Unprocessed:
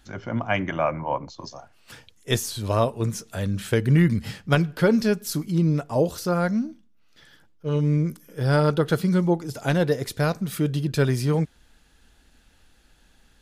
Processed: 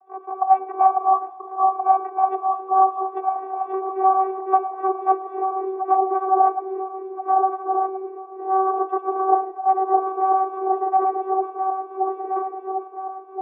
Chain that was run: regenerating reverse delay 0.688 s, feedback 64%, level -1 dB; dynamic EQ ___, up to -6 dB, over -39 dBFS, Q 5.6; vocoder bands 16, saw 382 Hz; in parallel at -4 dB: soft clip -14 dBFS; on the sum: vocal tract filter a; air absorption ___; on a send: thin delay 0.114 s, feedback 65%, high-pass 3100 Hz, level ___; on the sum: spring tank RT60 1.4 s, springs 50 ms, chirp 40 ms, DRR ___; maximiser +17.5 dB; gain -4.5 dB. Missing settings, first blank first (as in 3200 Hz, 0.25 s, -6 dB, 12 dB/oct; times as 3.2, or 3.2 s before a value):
370 Hz, 190 m, -11 dB, 16 dB